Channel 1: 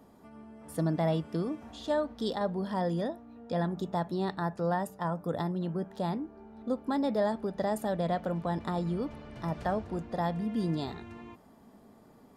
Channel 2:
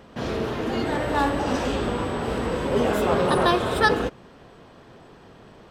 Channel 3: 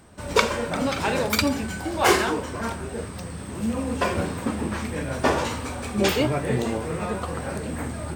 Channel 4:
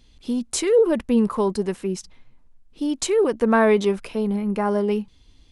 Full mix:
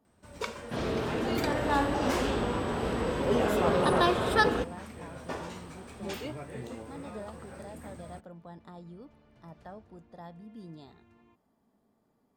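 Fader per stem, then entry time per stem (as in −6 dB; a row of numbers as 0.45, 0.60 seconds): −15.5 dB, −4.5 dB, −16.5 dB, muted; 0.00 s, 0.55 s, 0.05 s, muted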